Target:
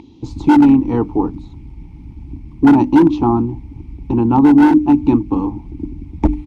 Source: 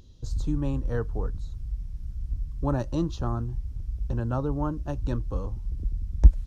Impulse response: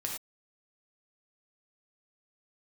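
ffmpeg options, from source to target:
-filter_complex "[0:a]asplit=3[a][b][c];[a]bandpass=f=300:t=q:w=8,volume=0dB[d];[b]bandpass=f=870:t=q:w=8,volume=-6dB[e];[c]bandpass=f=2.24k:t=q:w=8,volume=-9dB[f];[d][e][f]amix=inputs=3:normalize=0,asplit=2[g][h];[h]asetrate=37084,aresample=44100,atempo=1.18921,volume=-15dB[i];[g][i]amix=inputs=2:normalize=0,asoftclip=type=hard:threshold=-32dB,bandreject=f=50:t=h:w=6,bandreject=f=100:t=h:w=6,bandreject=f=150:t=h:w=6,bandreject=f=200:t=h:w=6,bandreject=f=250:t=h:w=6,bandreject=f=300:t=h:w=6,alimiter=level_in=33dB:limit=-1dB:release=50:level=0:latency=1,volume=-2dB" -ar 48000 -c:a libopus -b:a 48k

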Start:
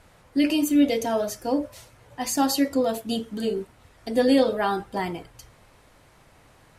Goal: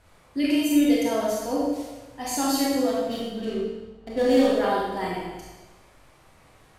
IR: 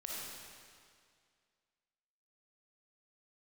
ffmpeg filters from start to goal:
-filter_complex "[0:a]asettb=1/sr,asplit=3[a][b][c];[a]atrim=end=2.894[d];[b]atrim=start=2.89:end=4.48,asetpts=PTS-STARTPTS,afade=t=in:d=0.004:c=qsin,afade=t=out:st=1.586:d=0.004:c=qsin,adynamicsmooth=sensitivity=6.5:basefreq=810[e];[c]atrim=start=4.476[f];[d][e]acrossfade=d=0.004:c1=hsin:c2=qsin[g];[g][f]acrossfade=d=0.004:c1=qsin:c2=hsin[h];[1:a]atrim=start_sample=2205,asetrate=79380,aresample=44100[i];[h][i]afir=irnorm=-1:irlink=0,volume=5dB"

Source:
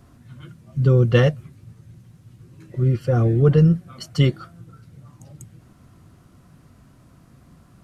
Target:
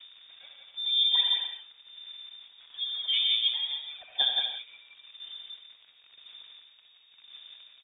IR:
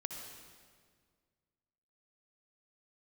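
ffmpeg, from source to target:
-filter_complex "[0:a]asettb=1/sr,asplit=3[a][b][c];[a]atrim=end=3.044[d];[b]atrim=start=3.04:end=4.38,asetpts=PTS-STARTPTS,afade=t=in:d=0.004:c=qsin,afade=t=out:st=1.336:d=0.004:c=qsin,equalizer=f=80:w=0.38:g=-14[e];[c]atrim=start=4.376[f];[d][e]acrossfade=d=0.004:c1=hsin:c2=qsin[g];[g][f]acrossfade=d=0.004:c1=qsin:c2=hsin,acompressor=threshold=-21dB:ratio=6,aphaser=in_gain=1:out_gain=1:delay=3.7:decay=0.74:speed=0.95:type=sinusoidal,acrusher=bits=8:dc=4:mix=0:aa=0.000001,aecho=1:1:174:0.631[h];[1:a]atrim=start_sample=2205,afade=t=out:st=0.22:d=0.01,atrim=end_sample=10143[i];[h][i]afir=irnorm=-1:irlink=0,lowpass=f=3.1k:t=q:w=0.5098,lowpass=f=3.1k:t=q:w=0.6013,lowpass=f=3.1k:t=q:w=0.9,lowpass=f=3.1k:t=q:w=2.563,afreqshift=-3700,volume=-8dB"

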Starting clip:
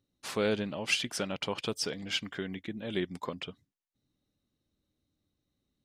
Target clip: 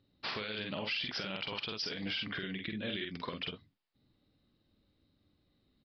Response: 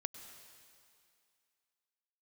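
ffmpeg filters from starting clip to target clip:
-filter_complex "[0:a]acrossover=split=1600[a][b];[a]acompressor=threshold=-43dB:ratio=6[c];[c][b]amix=inputs=2:normalize=0,asettb=1/sr,asplit=3[d][e][f];[d]atrim=end=2.274[g];[e]atrim=start=2.27:end=3.42,asetpts=PTS-STARTPTS,afade=t=in:d=0.004:c=qsin,afade=t=out:st=1.146:d=0.004:c=qsin,equalizer=f=850:w=3.2:g=-9.5[h];[f]atrim=start=3.416[i];[g][h]acrossfade=d=0.004:c1=hsin:c2=qsin[j];[j][i]acrossfade=d=0.004:c1=qsin:c2=hsin,asplit=2[k][l];[l]aecho=0:1:47|66:0.596|0.133[m];[k][m]amix=inputs=2:normalize=0,acontrast=76,aresample=11025,aresample=44100,alimiter=level_in=3dB:limit=-24dB:level=0:latency=1:release=108,volume=-3dB"

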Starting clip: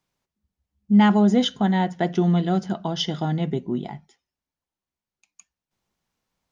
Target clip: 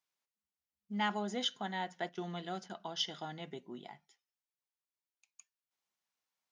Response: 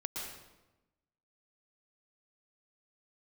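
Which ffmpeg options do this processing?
-filter_complex "[0:a]asettb=1/sr,asplit=3[a][b][c];[a]atrim=end=2.094[d];[b]atrim=start=2.09:end=2.8,asetpts=PTS-STARTPTS,afade=t=in:d=0.004:c=qsin,afade=t=out:st=0.706:d=0.004:c=qsin,agate=range=-9dB:threshold=-29dB:ratio=16:detection=peak[e];[c]atrim=start=2.796[f];[d][e]acrossfade=d=0.004:c1=hsin:c2=qsin[g];[g][f]acrossfade=d=0.004:c1=qsin:c2=hsin,highpass=f=1.2k:p=1,asoftclip=type=hard:threshold=-13.5dB,volume=-8dB"

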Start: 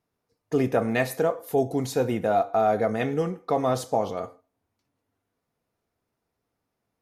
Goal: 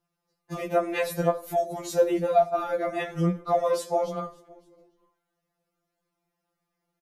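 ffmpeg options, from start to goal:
-filter_complex "[0:a]asplit=2[a][b];[b]asplit=3[c][d][e];[c]adelay=283,afreqshift=-57,volume=-23.5dB[f];[d]adelay=566,afreqshift=-114,volume=-29.2dB[g];[e]adelay=849,afreqshift=-171,volume=-34.9dB[h];[f][g][h]amix=inputs=3:normalize=0[i];[a][i]amix=inputs=2:normalize=0,afftfilt=real='re*2.83*eq(mod(b,8),0)':imag='im*2.83*eq(mod(b,8),0)':win_size=2048:overlap=0.75,volume=2dB"

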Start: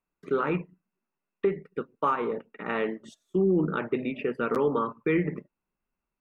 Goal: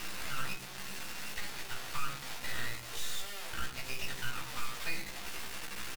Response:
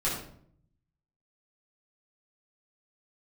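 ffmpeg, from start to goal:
-filter_complex "[0:a]aeval=exprs='val(0)+0.5*0.0237*sgn(val(0))':c=same,highpass=f=1.5k:w=0.5412,highpass=f=1.5k:w=1.3066,aemphasis=mode=reproduction:type=50fm,acompressor=threshold=-43dB:ratio=6,acrusher=bits=5:dc=4:mix=0:aa=0.000001,asplit=2[a][b];[b]adelay=16,volume=-4.5dB[c];[a][c]amix=inputs=2:normalize=0,asetrate=45938,aresample=44100,asplit=2[d][e];[1:a]atrim=start_sample=2205[f];[e][f]afir=irnorm=-1:irlink=0,volume=-12.5dB[g];[d][g]amix=inputs=2:normalize=0,volume=6dB"

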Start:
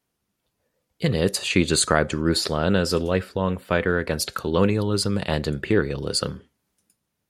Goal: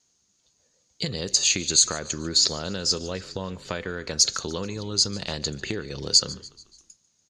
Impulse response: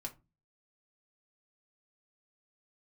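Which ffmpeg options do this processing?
-filter_complex "[0:a]acompressor=threshold=-28dB:ratio=6,lowpass=f=6.6k:t=q:w=14,equalizer=f=4.4k:t=o:w=0.79:g=10,asplit=2[a][b];[b]asplit=4[c][d][e][f];[c]adelay=145,afreqshift=-44,volume=-20dB[g];[d]adelay=290,afreqshift=-88,volume=-25.7dB[h];[e]adelay=435,afreqshift=-132,volume=-31.4dB[i];[f]adelay=580,afreqshift=-176,volume=-37dB[j];[g][h][i][j]amix=inputs=4:normalize=0[k];[a][k]amix=inputs=2:normalize=0"

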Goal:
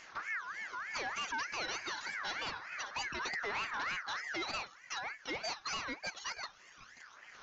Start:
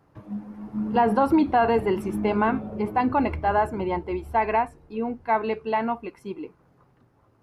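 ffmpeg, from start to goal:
-af "acompressor=threshold=-41dB:ratio=2.5,aphaser=in_gain=1:out_gain=1:delay=3.4:decay=0.61:speed=0.27:type=sinusoidal,aexciter=amount=9.1:drive=9.1:freq=2.6k,aresample=11025,asoftclip=type=tanh:threshold=-33dB,aresample=44100,aeval=exprs='val(0)*sin(2*PI*1600*n/s+1600*0.25/3.3*sin(2*PI*3.3*n/s))':c=same,volume=1.5dB"

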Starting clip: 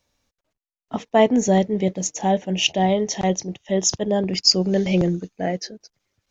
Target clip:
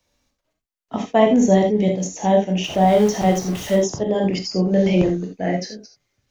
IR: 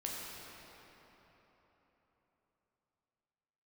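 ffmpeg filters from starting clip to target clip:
-filter_complex "[0:a]asettb=1/sr,asplit=3[a][b][c];[a]atrim=end=2.644[d];[b]atrim=start=2.64:end=3.76,asetpts=PTS-STARTPTS,afade=t=in:d=0.004:c=qsin,afade=t=out:st=1.116:d=0.004:c=qsin,aeval=exprs='val(0)+0.5*0.0422*sgn(val(0))':c=same[e];[c]atrim=start=3.756[f];[d][e]acrossfade=d=0.004:c1=hsin:c2=qsin[g];[g][f]acrossfade=d=0.004:c1=qsin:c2=hsin[h];[1:a]atrim=start_sample=2205,atrim=end_sample=3969[i];[h][i]afir=irnorm=-1:irlink=0,acrossover=split=120|1600[j][k][l];[l]acompressor=threshold=-34dB:ratio=6[m];[j][k][m]amix=inputs=3:normalize=0,volume=4dB"

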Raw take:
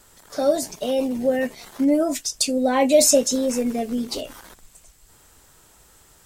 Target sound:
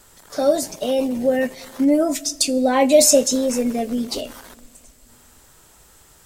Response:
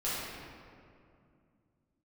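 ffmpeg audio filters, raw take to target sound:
-filter_complex "[0:a]asplit=2[a][b];[1:a]atrim=start_sample=2205,highshelf=f=5.8k:g=11[c];[b][c]afir=irnorm=-1:irlink=0,volume=-28.5dB[d];[a][d]amix=inputs=2:normalize=0,volume=2dB"

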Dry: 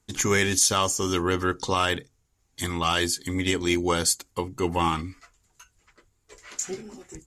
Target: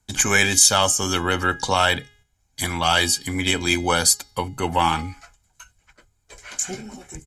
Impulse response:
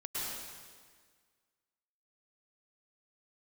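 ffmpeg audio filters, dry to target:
-filter_complex "[0:a]bandreject=f=414.2:t=h:w=4,bandreject=f=828.4:t=h:w=4,bandreject=f=1.2426k:t=h:w=4,bandreject=f=1.6568k:t=h:w=4,bandreject=f=2.071k:t=h:w=4,bandreject=f=2.4852k:t=h:w=4,bandreject=f=2.8994k:t=h:w=4,bandreject=f=3.3136k:t=h:w=4,bandreject=f=3.7278k:t=h:w=4,bandreject=f=4.142k:t=h:w=4,bandreject=f=4.5562k:t=h:w=4,bandreject=f=4.9704k:t=h:w=4,bandreject=f=5.3846k:t=h:w=4,bandreject=f=5.7988k:t=h:w=4,agate=range=-6dB:threshold=-58dB:ratio=16:detection=peak,aecho=1:1:1.3:0.53,acrossover=split=240[a][b];[a]asoftclip=type=tanh:threshold=-34.5dB[c];[c][b]amix=inputs=2:normalize=0,volume=5.5dB"

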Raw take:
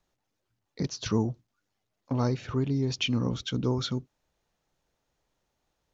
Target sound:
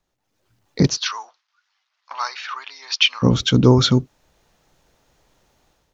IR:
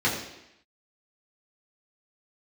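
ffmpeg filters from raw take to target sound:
-filter_complex "[0:a]dynaudnorm=f=160:g=5:m=15dB,asplit=3[a][b][c];[a]afade=t=out:st=0.96:d=0.02[d];[b]asuperpass=centerf=2400:order=8:qfactor=0.52,afade=t=in:st=0.96:d=0.02,afade=t=out:st=3.22:d=0.02[e];[c]afade=t=in:st=3.22:d=0.02[f];[d][e][f]amix=inputs=3:normalize=0,volume=1.5dB"

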